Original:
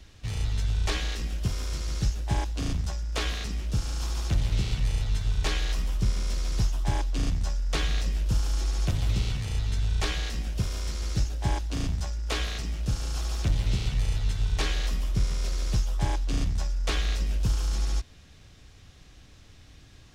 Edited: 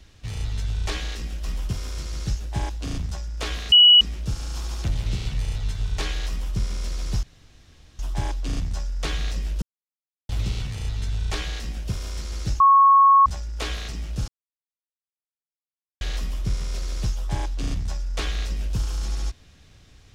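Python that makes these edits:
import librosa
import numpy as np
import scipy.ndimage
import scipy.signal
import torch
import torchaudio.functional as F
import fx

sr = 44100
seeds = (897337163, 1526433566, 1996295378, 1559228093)

y = fx.edit(x, sr, fx.insert_tone(at_s=3.47, length_s=0.29, hz=2930.0, db=-8.5),
    fx.duplicate(start_s=5.74, length_s=0.25, to_s=1.44),
    fx.insert_room_tone(at_s=6.69, length_s=0.76),
    fx.silence(start_s=8.32, length_s=0.67),
    fx.bleep(start_s=11.3, length_s=0.66, hz=1100.0, db=-10.5),
    fx.silence(start_s=12.98, length_s=1.73), tone=tone)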